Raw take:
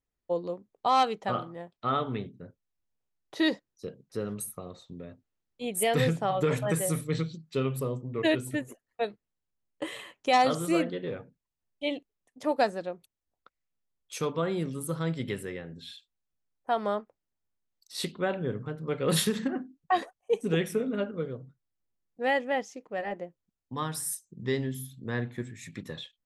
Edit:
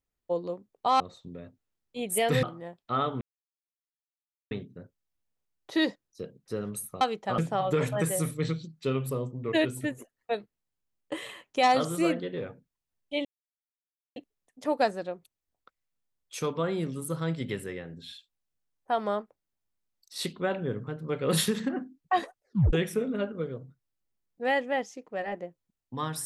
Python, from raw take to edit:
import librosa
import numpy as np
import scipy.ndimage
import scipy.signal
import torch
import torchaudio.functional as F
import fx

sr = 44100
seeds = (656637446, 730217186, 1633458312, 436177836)

y = fx.edit(x, sr, fx.swap(start_s=1.0, length_s=0.37, other_s=4.65, other_length_s=1.43),
    fx.insert_silence(at_s=2.15, length_s=1.3),
    fx.insert_silence(at_s=11.95, length_s=0.91),
    fx.tape_stop(start_s=20.16, length_s=0.36), tone=tone)